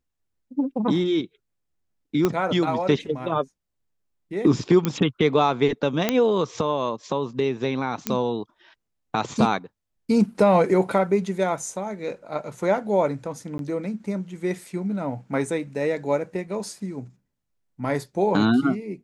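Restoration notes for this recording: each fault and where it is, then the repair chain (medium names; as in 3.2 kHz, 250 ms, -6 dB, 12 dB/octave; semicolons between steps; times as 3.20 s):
2.25 s: pop -8 dBFS
4.85 s: pop -9 dBFS
6.09 s: pop -5 dBFS
8.07 s: pop -7 dBFS
13.58–13.59 s: dropout 12 ms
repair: de-click; interpolate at 13.58 s, 12 ms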